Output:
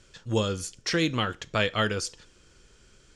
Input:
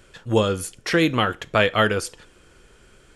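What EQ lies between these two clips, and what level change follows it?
low-pass with resonance 5,900 Hz, resonance Q 1.5
bass and treble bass +4 dB, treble +8 dB
parametric band 720 Hz −2.5 dB 0.31 octaves
−8.0 dB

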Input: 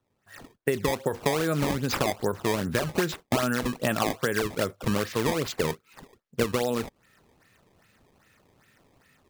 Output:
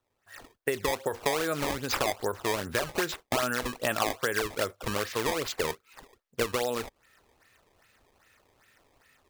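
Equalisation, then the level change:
parametric band 170 Hz −12 dB 1.7 octaves
0.0 dB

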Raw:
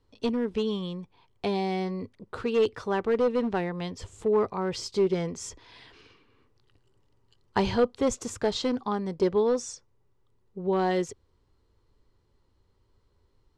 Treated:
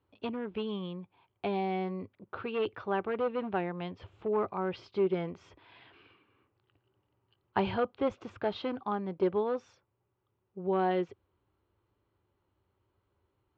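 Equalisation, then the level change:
loudspeaker in its box 120–2,800 Hz, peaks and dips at 150 Hz −8 dB, 240 Hz −9 dB, 460 Hz −9 dB, 1,000 Hz −4 dB, 1,900 Hz −7 dB
0.0 dB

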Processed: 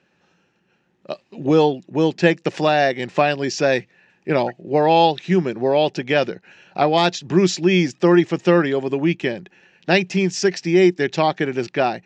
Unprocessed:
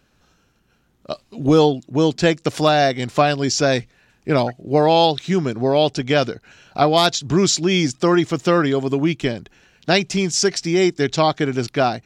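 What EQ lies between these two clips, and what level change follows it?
loudspeaker in its box 120–7,000 Hz, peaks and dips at 180 Hz +10 dB, 360 Hz +9 dB, 540 Hz +7 dB, 850 Hz +8 dB, 1,800 Hz +10 dB, 2,600 Hz +9 dB
−6.5 dB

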